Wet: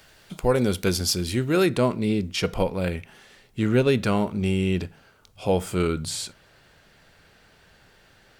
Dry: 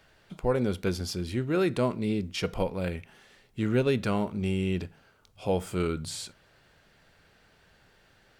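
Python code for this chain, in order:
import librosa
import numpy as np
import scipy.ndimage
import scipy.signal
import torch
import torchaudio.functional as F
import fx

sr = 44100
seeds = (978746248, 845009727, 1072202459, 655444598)

y = fx.high_shelf(x, sr, hz=4100.0, db=fx.steps((0.0, 11.5), (1.65, 2.5)))
y = y * librosa.db_to_amplitude(5.0)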